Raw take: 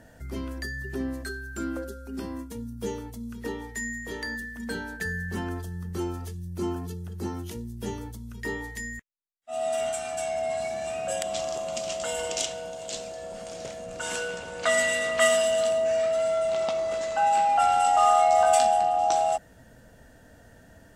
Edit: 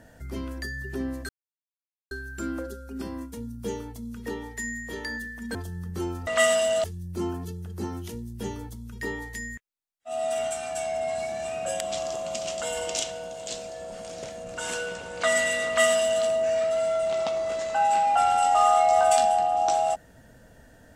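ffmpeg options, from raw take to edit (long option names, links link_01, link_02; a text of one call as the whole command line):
ffmpeg -i in.wav -filter_complex "[0:a]asplit=5[link_01][link_02][link_03][link_04][link_05];[link_01]atrim=end=1.29,asetpts=PTS-STARTPTS,afade=type=out:start_time=1.286:duration=0.004:curve=hsin,apad=pad_dur=0.82[link_06];[link_02]atrim=start=1.29:end=4.732,asetpts=PTS-STARTPTS,afade=type=in:duration=0.004:curve=hsin[link_07];[link_03]atrim=start=5.538:end=6.262[link_08];[link_04]atrim=start=15.088:end=15.662[link_09];[link_05]atrim=start=6.258[link_10];[link_06][link_07]concat=n=2:v=0:a=1[link_11];[link_11][link_08]acrossfade=duration=0.004:curve1=hsin:curve2=hsin[link_12];[link_12][link_09]acrossfade=duration=0.004:curve1=hsin:curve2=hsin[link_13];[link_13][link_10]acrossfade=duration=0.004:curve1=hsin:curve2=hsin" out.wav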